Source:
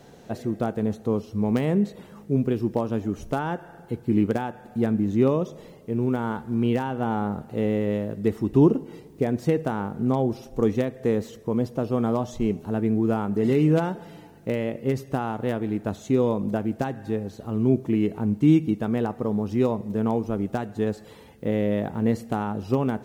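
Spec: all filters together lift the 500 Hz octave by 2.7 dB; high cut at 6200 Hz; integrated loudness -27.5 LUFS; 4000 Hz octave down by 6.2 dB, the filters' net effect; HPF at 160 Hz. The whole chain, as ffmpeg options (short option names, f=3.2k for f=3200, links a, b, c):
-af "highpass=160,lowpass=6.2k,equalizer=f=500:t=o:g=3.5,equalizer=f=4k:t=o:g=-8.5,volume=-3dB"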